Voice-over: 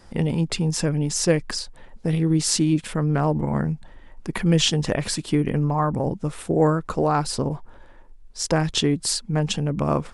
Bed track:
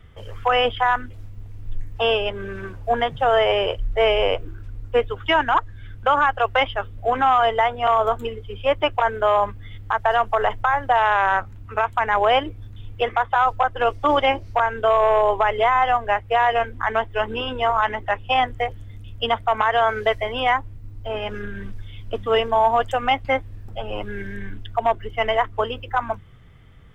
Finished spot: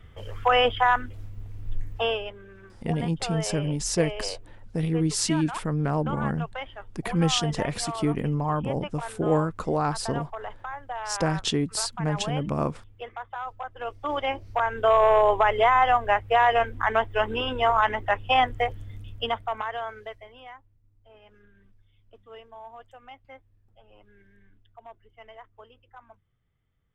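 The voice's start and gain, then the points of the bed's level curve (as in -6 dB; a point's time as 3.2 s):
2.70 s, -4.5 dB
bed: 1.91 s -1.5 dB
2.44 s -16.5 dB
13.6 s -16.5 dB
14.94 s -1.5 dB
18.99 s -1.5 dB
20.57 s -26.5 dB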